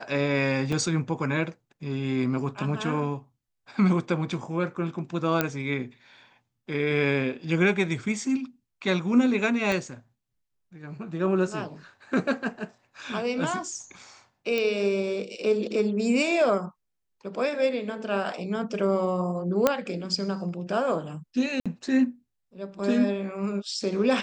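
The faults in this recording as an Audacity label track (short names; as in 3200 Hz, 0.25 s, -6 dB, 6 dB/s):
0.720000	0.720000	gap 4.4 ms
5.410000	5.410000	pop -8 dBFS
9.720000	9.720000	pop -14 dBFS
14.580000	14.580000	pop -15 dBFS
19.670000	19.670000	pop -6 dBFS
21.600000	21.660000	gap 56 ms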